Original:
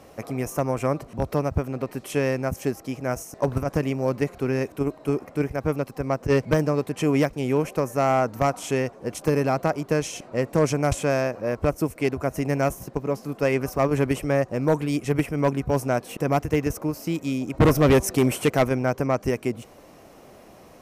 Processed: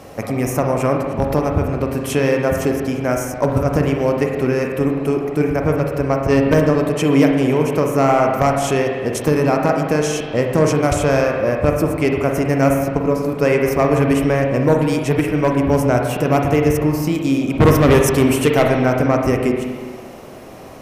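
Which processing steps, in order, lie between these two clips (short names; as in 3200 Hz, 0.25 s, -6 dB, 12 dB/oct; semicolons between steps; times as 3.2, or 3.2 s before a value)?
in parallel at +2 dB: compressor, threshold -28 dBFS, peak gain reduction 13 dB; on the sum: spring tank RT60 1.6 s, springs 40/51 ms, chirp 25 ms, DRR 1.5 dB; gain +2 dB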